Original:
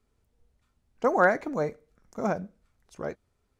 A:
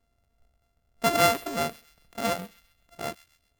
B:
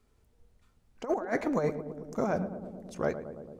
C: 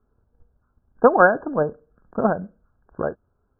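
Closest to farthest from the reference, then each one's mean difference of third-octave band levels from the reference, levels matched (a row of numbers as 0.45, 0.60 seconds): C, B, A; 5.5, 7.5, 12.0 decibels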